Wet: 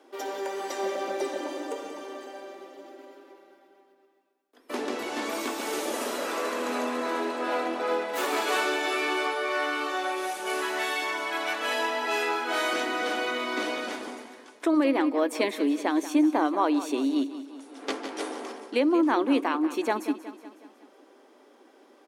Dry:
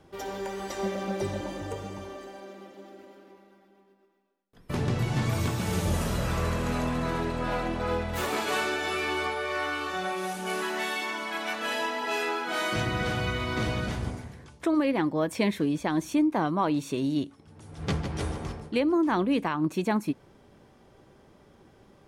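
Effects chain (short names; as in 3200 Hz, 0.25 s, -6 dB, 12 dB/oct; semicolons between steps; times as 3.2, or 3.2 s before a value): elliptic high-pass 260 Hz, stop band 40 dB; on a send: feedback echo 0.184 s, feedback 54%, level -13.5 dB; on the sum: gain +2.5 dB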